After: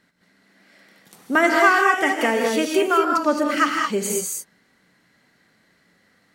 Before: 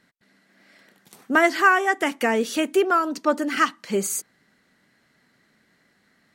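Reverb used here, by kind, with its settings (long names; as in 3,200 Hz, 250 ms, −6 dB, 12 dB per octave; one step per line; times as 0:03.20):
reverb whose tail is shaped and stops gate 240 ms rising, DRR 0.5 dB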